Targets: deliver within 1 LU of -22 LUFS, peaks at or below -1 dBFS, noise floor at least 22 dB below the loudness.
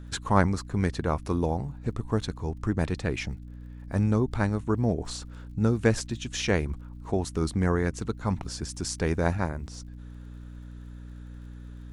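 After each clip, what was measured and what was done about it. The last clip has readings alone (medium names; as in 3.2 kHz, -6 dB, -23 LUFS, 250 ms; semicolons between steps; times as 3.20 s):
tick rate 51 per s; hum 60 Hz; highest harmonic 300 Hz; hum level -39 dBFS; loudness -28.5 LUFS; peak level -5.5 dBFS; loudness target -22.0 LUFS
-> de-click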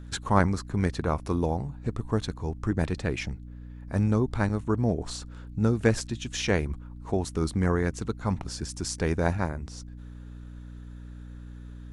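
tick rate 0.17 per s; hum 60 Hz; highest harmonic 300 Hz; hum level -39 dBFS
-> de-hum 60 Hz, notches 5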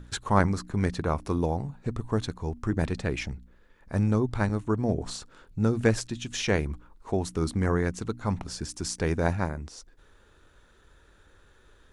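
hum not found; loudness -29.0 LUFS; peak level -6.5 dBFS; loudness target -22.0 LUFS
-> trim +7 dB; peak limiter -1 dBFS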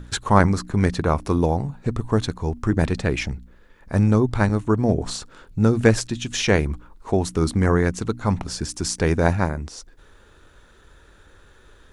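loudness -22.0 LUFS; peak level -1.0 dBFS; noise floor -52 dBFS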